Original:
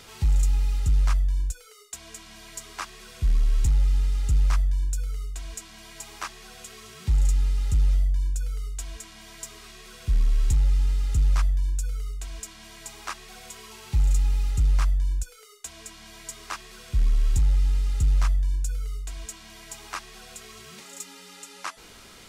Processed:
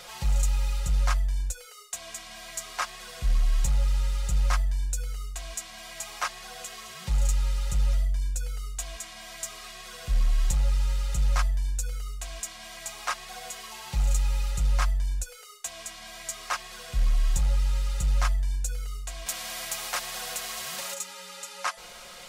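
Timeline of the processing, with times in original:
19.26–20.94 spectral compressor 2:1
whole clip: resonant low shelf 440 Hz -6.5 dB, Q 3; comb 5.6 ms, depth 67%; gain +2 dB

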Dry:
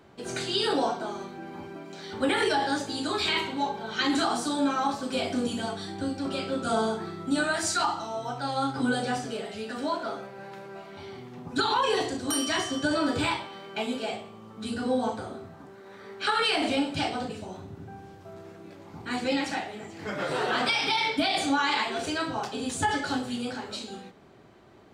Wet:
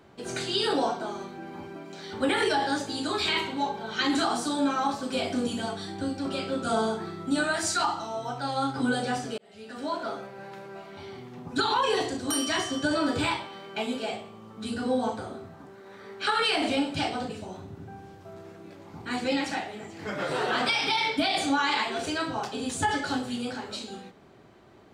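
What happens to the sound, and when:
9.38–10.03 fade in

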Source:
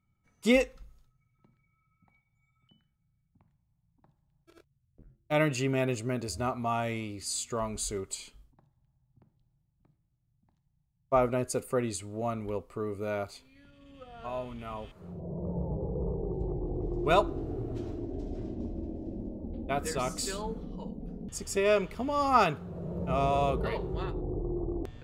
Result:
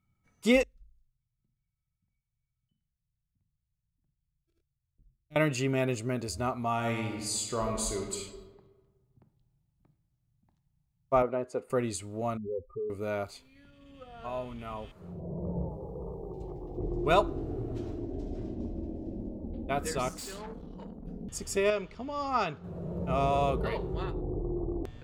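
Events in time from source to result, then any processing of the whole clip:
0.63–5.36 passive tone stack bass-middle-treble 10-0-1
6.74–8.16 reverb throw, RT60 1.4 s, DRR 2 dB
11.22–11.7 band-pass 650 Hz, Q 0.67
12.37–12.9 spectral contrast raised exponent 3.5
15.69–16.78 tilt shelf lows -8.5 dB
20.09–21.07 tube stage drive 38 dB, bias 0.6
21.7–22.64 ladder low-pass 7300 Hz, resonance 25%

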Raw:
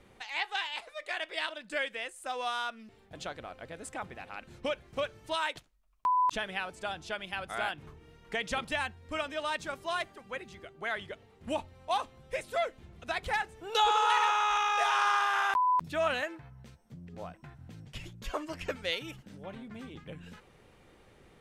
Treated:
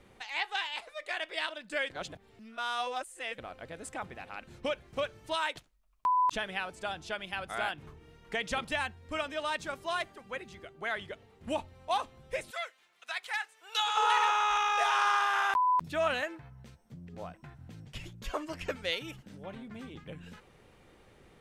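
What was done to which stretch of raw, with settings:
1.9–3.38 reverse
12.51–13.97 HPF 1300 Hz

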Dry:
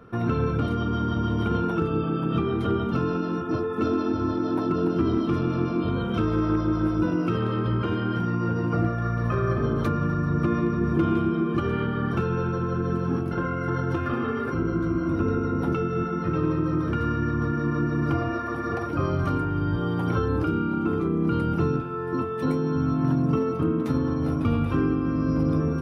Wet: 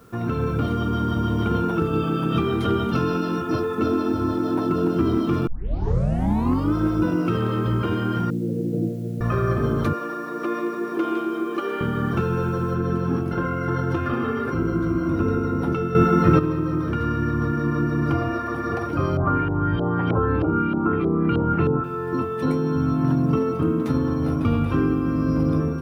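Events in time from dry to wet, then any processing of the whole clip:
1.93–3.75 high shelf 2100 Hz +7.5 dB
5.47 tape start 1.29 s
8.3–9.21 elliptic band-pass 130–520 Hz
9.93–11.81 HPF 320 Hz 24 dB/oct
12.74 noise floor step -61 dB -68 dB
15.95–16.39 gain +9.5 dB
19.17–21.84 LFO low-pass saw up 3.2 Hz 630–3200 Hz
whole clip: AGC gain up to 3.5 dB; gain -1 dB

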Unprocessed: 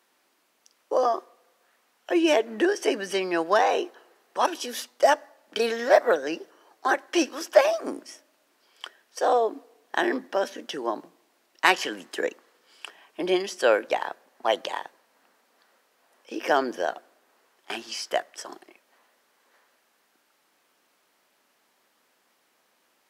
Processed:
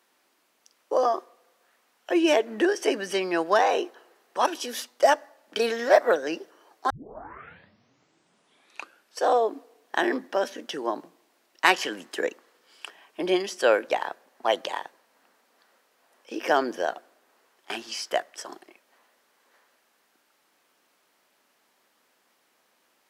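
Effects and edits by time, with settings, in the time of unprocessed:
6.9 tape start 2.35 s

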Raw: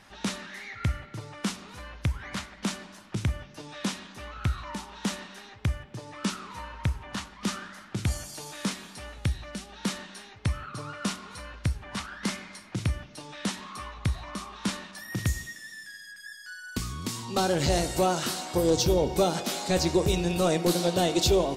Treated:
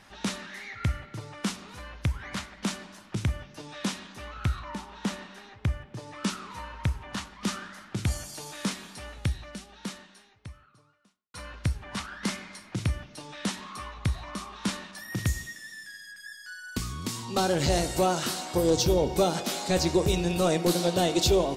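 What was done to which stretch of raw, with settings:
4.59–5.97 high shelf 3400 Hz -6.5 dB
9.21–11.34 fade out quadratic

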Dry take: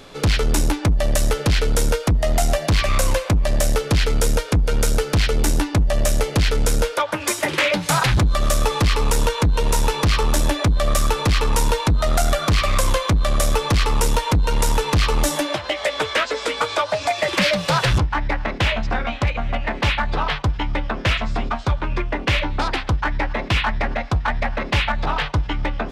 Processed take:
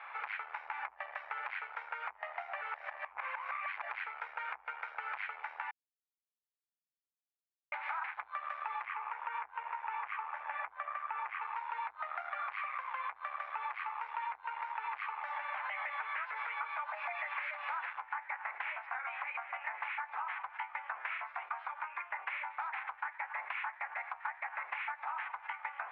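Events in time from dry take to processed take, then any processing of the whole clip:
2.61–3.89 reverse
5.71–7.72 mute
8.85–11.42 bell 4300 Hz -12.5 dB 0.64 oct
whole clip: limiter -22.5 dBFS; elliptic band-pass 830–2300 Hz, stop band 60 dB; compressor, threshold -38 dBFS; gain +2 dB

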